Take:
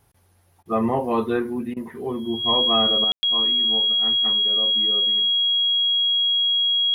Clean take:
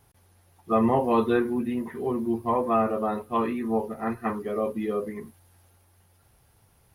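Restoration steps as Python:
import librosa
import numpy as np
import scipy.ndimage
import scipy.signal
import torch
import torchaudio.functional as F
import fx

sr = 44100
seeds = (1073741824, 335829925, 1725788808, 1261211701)

y = fx.notch(x, sr, hz=3300.0, q=30.0)
y = fx.fix_ambience(y, sr, seeds[0], print_start_s=0.16, print_end_s=0.66, start_s=3.12, end_s=3.23)
y = fx.fix_interpolate(y, sr, at_s=(0.63, 1.74), length_ms=24.0)
y = fx.gain(y, sr, db=fx.steps((0.0, 0.0), (3.04, 8.0)))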